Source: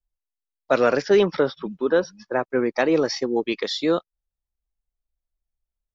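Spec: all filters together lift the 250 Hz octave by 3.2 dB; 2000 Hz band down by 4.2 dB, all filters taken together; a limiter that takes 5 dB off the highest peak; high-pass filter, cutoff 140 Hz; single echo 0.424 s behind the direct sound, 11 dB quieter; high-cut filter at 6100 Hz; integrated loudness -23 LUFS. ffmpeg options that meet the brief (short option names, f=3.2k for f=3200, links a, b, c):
-af "highpass=140,lowpass=6.1k,equalizer=f=250:t=o:g=5,equalizer=f=2k:t=o:g=-6,alimiter=limit=-11dB:level=0:latency=1,aecho=1:1:424:0.282,volume=-0.5dB"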